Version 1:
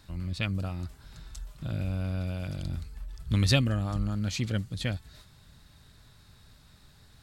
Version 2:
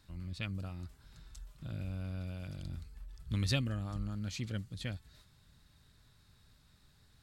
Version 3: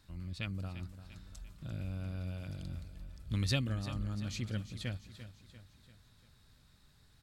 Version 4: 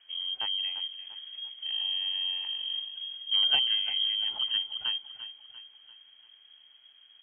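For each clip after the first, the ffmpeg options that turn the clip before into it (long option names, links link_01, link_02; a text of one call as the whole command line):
ffmpeg -i in.wav -af "equalizer=frequency=690:width=1.5:gain=-2.5,volume=-8.5dB" out.wav
ffmpeg -i in.wav -af "aecho=1:1:344|688|1032|1376|1720:0.224|0.112|0.056|0.028|0.014" out.wav
ffmpeg -i in.wav -af "highshelf=frequency=2100:gain=-11,lowpass=frequency=2800:width_type=q:width=0.5098,lowpass=frequency=2800:width_type=q:width=0.6013,lowpass=frequency=2800:width_type=q:width=0.9,lowpass=frequency=2800:width_type=q:width=2.563,afreqshift=-3300,volume=7.5dB" out.wav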